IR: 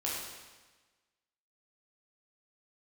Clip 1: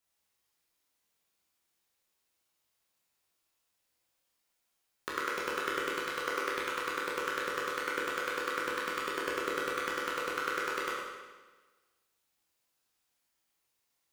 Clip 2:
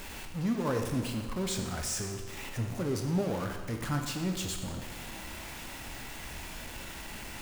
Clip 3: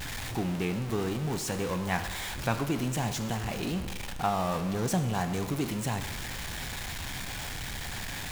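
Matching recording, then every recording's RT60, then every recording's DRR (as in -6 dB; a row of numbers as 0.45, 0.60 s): 1; 1.3, 1.3, 1.3 s; -6.0, 3.0, 8.0 dB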